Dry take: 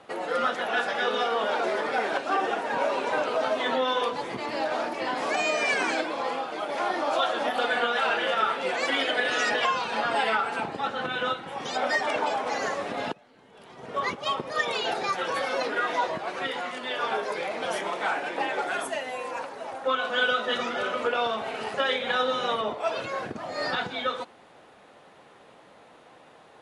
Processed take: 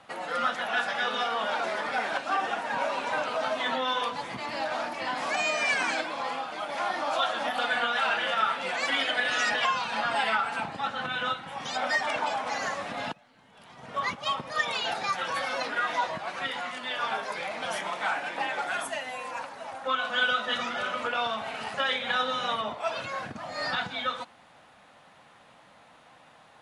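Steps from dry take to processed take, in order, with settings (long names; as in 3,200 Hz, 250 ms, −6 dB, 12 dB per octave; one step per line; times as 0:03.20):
parametric band 400 Hz −12.5 dB 0.85 octaves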